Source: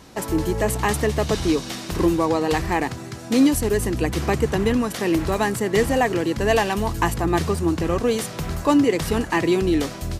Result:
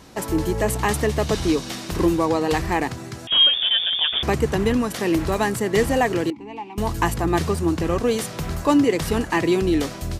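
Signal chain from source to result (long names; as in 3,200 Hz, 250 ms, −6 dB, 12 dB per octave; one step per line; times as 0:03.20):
0:03.27–0:04.23: voice inversion scrambler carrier 3,500 Hz
0:06.30–0:06.78: formant filter u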